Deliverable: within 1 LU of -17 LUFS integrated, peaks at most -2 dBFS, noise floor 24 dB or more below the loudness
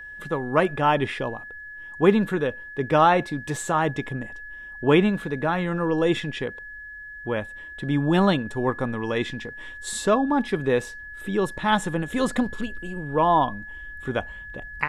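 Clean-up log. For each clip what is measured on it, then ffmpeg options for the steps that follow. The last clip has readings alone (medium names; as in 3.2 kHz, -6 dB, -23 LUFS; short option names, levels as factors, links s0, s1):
steady tone 1.7 kHz; tone level -37 dBFS; loudness -24.0 LUFS; peak level -4.5 dBFS; loudness target -17.0 LUFS
-> -af "bandreject=f=1700:w=30"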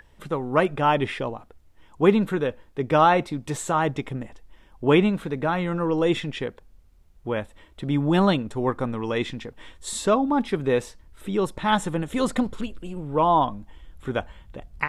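steady tone not found; loudness -24.0 LUFS; peak level -5.0 dBFS; loudness target -17.0 LUFS
-> -af "volume=2.24,alimiter=limit=0.794:level=0:latency=1"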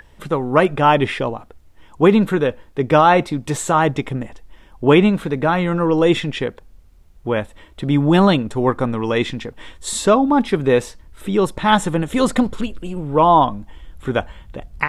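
loudness -17.5 LUFS; peak level -2.0 dBFS; noise floor -47 dBFS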